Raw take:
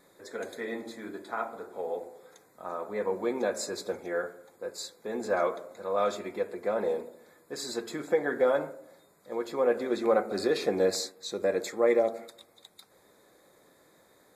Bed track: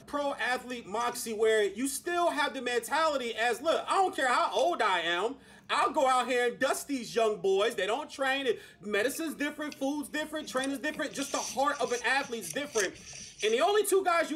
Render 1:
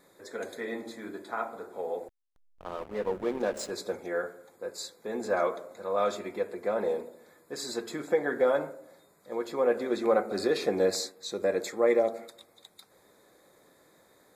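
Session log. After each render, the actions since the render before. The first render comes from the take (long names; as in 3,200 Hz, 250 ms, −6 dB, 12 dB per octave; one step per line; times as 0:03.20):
0:02.08–0:03.71: slack as between gear wheels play −34 dBFS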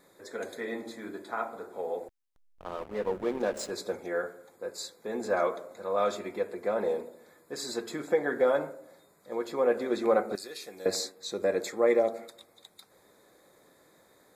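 0:10.35–0:10.86: first-order pre-emphasis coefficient 0.9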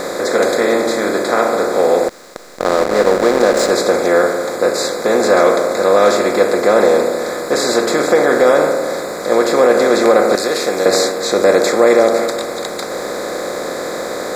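compressor on every frequency bin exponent 0.4
boost into a limiter +11.5 dB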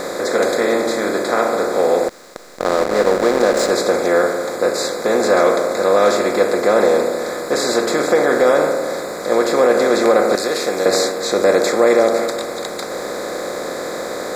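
level −2.5 dB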